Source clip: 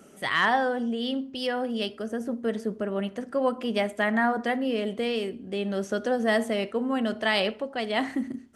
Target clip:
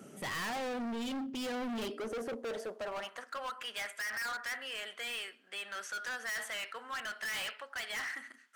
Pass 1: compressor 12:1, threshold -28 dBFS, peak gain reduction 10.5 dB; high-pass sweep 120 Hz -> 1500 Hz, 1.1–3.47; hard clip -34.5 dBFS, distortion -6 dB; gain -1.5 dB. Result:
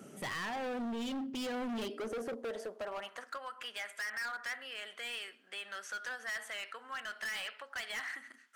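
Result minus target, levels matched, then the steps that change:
compressor: peak gain reduction +10.5 dB
remove: compressor 12:1, threshold -28 dBFS, peak gain reduction 10.5 dB

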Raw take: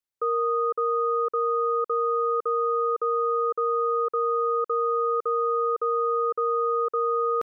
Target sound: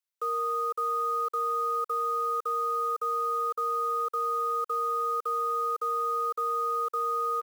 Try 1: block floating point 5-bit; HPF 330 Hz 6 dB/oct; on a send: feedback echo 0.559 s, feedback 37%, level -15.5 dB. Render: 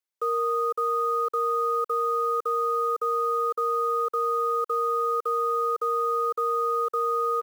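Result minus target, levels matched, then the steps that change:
250 Hz band +4.5 dB
change: HPF 1200 Hz 6 dB/oct

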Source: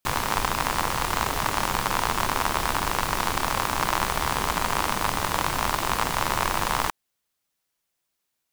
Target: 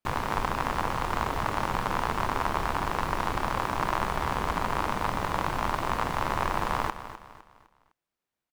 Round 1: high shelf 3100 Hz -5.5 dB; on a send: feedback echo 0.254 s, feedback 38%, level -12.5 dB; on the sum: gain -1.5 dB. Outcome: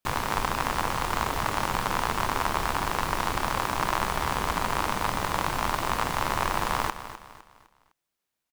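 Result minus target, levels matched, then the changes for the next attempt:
8000 Hz band +6.5 dB
change: high shelf 3100 Hz -15 dB

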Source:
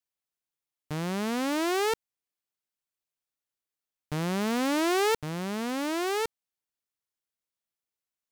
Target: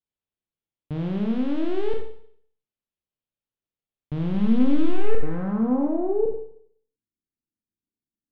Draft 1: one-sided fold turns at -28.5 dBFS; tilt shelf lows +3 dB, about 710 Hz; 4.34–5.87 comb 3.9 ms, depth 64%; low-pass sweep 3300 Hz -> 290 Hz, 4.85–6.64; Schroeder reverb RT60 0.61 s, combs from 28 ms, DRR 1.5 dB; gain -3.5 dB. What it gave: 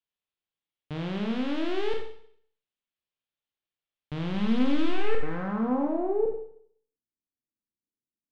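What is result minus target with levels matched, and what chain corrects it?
1000 Hz band +5.0 dB
one-sided fold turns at -28.5 dBFS; tilt shelf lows +10 dB, about 710 Hz; 4.34–5.87 comb 3.9 ms, depth 64%; low-pass sweep 3300 Hz -> 290 Hz, 4.85–6.64; Schroeder reverb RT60 0.61 s, combs from 28 ms, DRR 1.5 dB; gain -3.5 dB

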